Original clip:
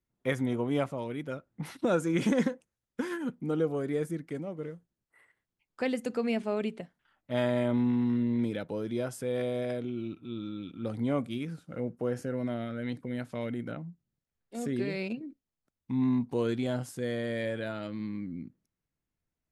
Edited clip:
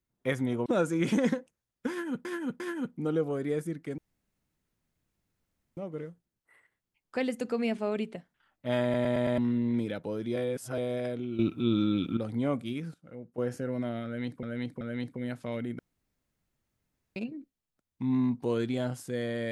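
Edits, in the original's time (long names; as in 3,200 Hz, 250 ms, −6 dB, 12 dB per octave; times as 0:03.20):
0:00.66–0:01.80: remove
0:03.04–0:03.39: repeat, 3 plays
0:04.42: splice in room tone 1.79 s
0:07.48: stutter in place 0.11 s, 5 plays
0:09.01–0:09.43: reverse
0:10.04–0:10.82: clip gain +11.5 dB
0:11.59–0:12.03: clip gain −10 dB
0:12.70–0:13.08: repeat, 3 plays
0:13.68–0:15.05: fill with room tone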